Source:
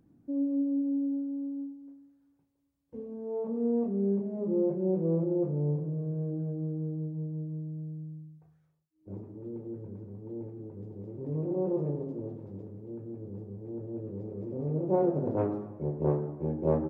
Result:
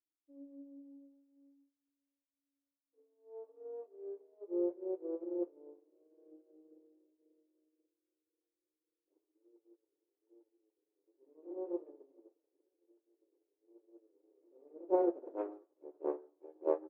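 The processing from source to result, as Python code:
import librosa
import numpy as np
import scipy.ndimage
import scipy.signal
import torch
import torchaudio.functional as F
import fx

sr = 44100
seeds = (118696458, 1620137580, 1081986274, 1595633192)

y = fx.brickwall_highpass(x, sr, low_hz=280.0)
y = fx.echo_filtered(y, sr, ms=539, feedback_pct=80, hz=1000.0, wet_db=-16.0)
y = fx.upward_expand(y, sr, threshold_db=-48.0, expansion=2.5)
y = y * librosa.db_to_amplitude(-1.5)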